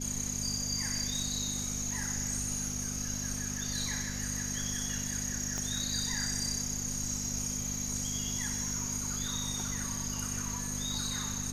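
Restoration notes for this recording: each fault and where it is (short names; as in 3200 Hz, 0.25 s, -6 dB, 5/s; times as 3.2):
hum 50 Hz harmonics 5 -40 dBFS
5.58 pop -21 dBFS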